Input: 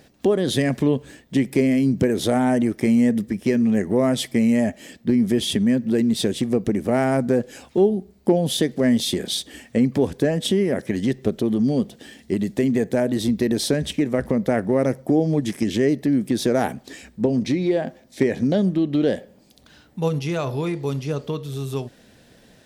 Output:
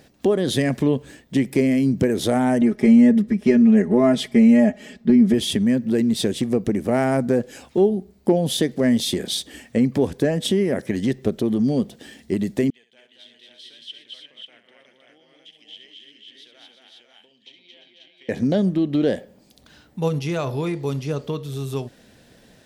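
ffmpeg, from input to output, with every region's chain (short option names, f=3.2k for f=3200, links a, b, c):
-filter_complex "[0:a]asettb=1/sr,asplit=3[a][b][c];[a]atrim=end=2.614[d];[b]atrim=start=2.61:end=5.34,asetpts=PTS-STARTPTS,afade=t=in:d=0.004:c=qsin,afade=t=out:st=2.726:d=0.004:c=qsin,aemphasis=mode=reproduction:type=50kf,bandreject=f=970:w=26,aecho=1:1:4.8:0.94,atrim=end_sample=120393[e];[c]atrim=start=5.336[f];[d][e]acrossfade=d=0.004:c1=hsin:c2=qsin[g];[g][f]acrossfade=d=0.004:c1=qsin:c2=hsin,asettb=1/sr,asplit=3[h][i][j];[h]atrim=end=12.704[k];[i]atrim=start=12.7:end=18.29,asetpts=PTS-STARTPTS,afade=t=in:d=0.004:c=qsin,afade=t=out:st=5.586:d=0.004:c=qsin,agate=range=-33dB:threshold=-36dB:ratio=3:release=100:detection=peak,bandpass=f=3.1k:t=q:w=14,aecho=1:1:67|225|346|498|540:0.316|0.708|0.316|0.398|0.668,atrim=end_sample=246519[l];[j]atrim=start=18.286[m];[k][l]acrossfade=d=0.004:c1=hsin:c2=qsin[n];[n][m]acrossfade=d=0.004:c1=qsin:c2=hsin"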